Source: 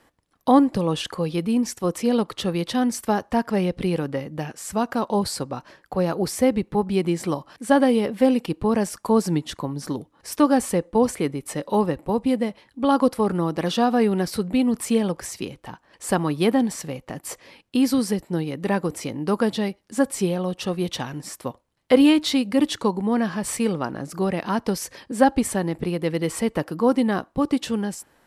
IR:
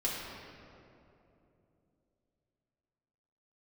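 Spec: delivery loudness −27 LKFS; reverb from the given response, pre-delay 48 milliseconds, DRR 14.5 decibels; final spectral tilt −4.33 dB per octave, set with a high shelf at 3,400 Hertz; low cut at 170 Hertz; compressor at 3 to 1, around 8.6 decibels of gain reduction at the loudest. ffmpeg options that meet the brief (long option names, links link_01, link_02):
-filter_complex "[0:a]highpass=170,highshelf=frequency=3400:gain=3,acompressor=threshold=-22dB:ratio=3,asplit=2[link_01][link_02];[1:a]atrim=start_sample=2205,adelay=48[link_03];[link_02][link_03]afir=irnorm=-1:irlink=0,volume=-20.5dB[link_04];[link_01][link_04]amix=inputs=2:normalize=0,volume=0.5dB"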